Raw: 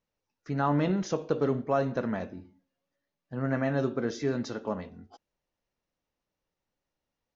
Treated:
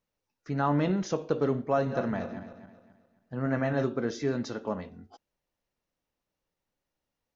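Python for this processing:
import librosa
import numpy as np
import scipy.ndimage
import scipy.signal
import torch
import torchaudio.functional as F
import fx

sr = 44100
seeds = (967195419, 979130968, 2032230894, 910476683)

y = fx.reverse_delay_fb(x, sr, ms=133, feedback_pct=58, wet_db=-10, at=(1.6, 3.86))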